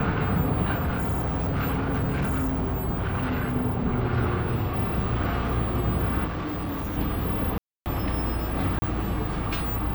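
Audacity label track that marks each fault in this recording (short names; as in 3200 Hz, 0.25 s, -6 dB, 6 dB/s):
0.760000	3.560000	clipped -22 dBFS
6.260000	6.980000	clipped -27 dBFS
7.580000	7.860000	gap 0.279 s
8.790000	8.820000	gap 30 ms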